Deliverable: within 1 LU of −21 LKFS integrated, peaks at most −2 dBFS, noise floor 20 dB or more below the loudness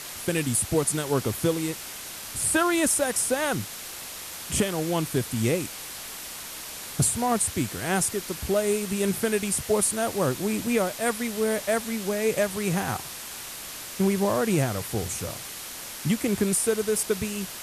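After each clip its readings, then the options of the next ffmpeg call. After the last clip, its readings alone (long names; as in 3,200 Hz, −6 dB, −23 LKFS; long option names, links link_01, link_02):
background noise floor −38 dBFS; target noise floor −47 dBFS; integrated loudness −26.5 LKFS; sample peak −11.0 dBFS; target loudness −21.0 LKFS
→ -af "afftdn=noise_reduction=9:noise_floor=-38"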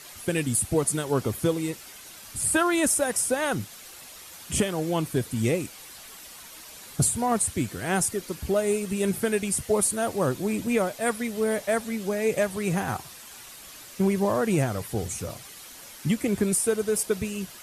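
background noise floor −45 dBFS; target noise floor −46 dBFS
→ -af "afftdn=noise_reduction=6:noise_floor=-45"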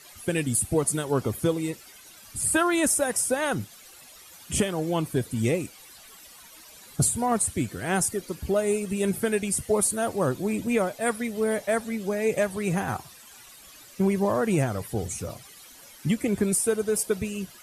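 background noise floor −49 dBFS; integrated loudness −26.0 LKFS; sample peak −11.5 dBFS; target loudness −21.0 LKFS
→ -af "volume=5dB"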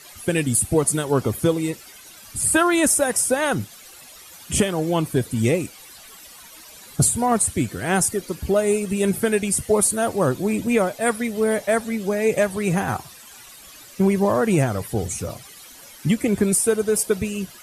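integrated loudness −21.0 LKFS; sample peak −6.5 dBFS; background noise floor −44 dBFS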